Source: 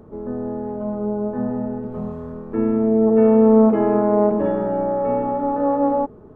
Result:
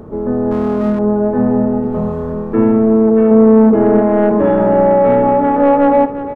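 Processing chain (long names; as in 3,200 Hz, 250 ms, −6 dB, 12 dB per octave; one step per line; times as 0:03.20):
0:03.31–0:04.02: tilt shelving filter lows +5 dB, about 1,100 Hz
speech leveller within 4 dB 0.5 s
soft clipping −10 dBFS, distortion −16 dB
single-tap delay 349 ms −12.5 dB
0:00.51–0:00.99: windowed peak hold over 17 samples
level +7 dB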